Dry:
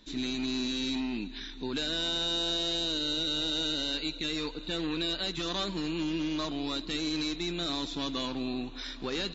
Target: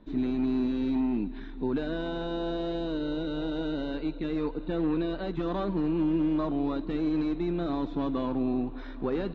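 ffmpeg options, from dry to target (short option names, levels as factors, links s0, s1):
-af "lowpass=1000,volume=2"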